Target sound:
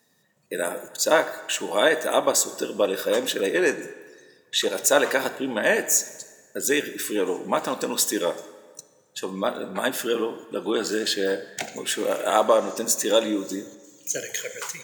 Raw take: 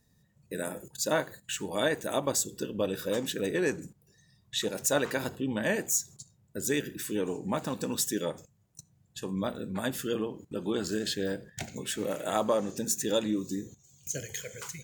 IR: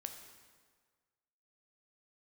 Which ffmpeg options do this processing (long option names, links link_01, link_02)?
-filter_complex "[0:a]highpass=330,asplit=2[link_01][link_02];[1:a]atrim=start_sample=2205,lowshelf=frequency=370:gain=-10.5,highshelf=frequency=3900:gain=-11.5[link_03];[link_02][link_03]afir=irnorm=-1:irlink=0,volume=4dB[link_04];[link_01][link_04]amix=inputs=2:normalize=0,volume=5dB"